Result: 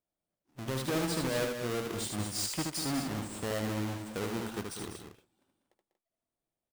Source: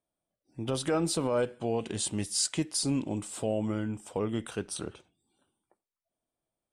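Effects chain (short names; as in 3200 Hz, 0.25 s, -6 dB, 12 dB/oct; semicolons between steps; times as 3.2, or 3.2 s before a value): half-waves squared off; loudspeakers at several distances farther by 26 m -4 dB, 67 m -9 dB, 81 m -10 dB; gain -9 dB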